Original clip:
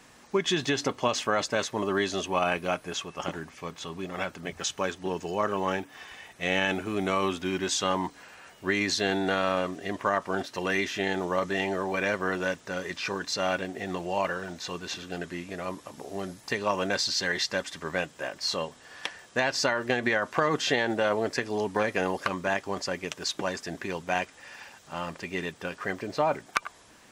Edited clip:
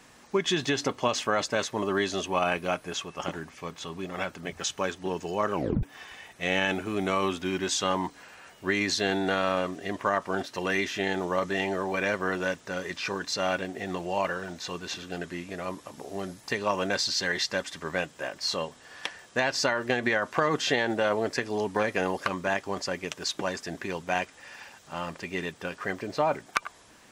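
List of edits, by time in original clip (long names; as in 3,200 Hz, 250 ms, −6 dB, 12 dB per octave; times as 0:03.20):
0:05.54: tape stop 0.29 s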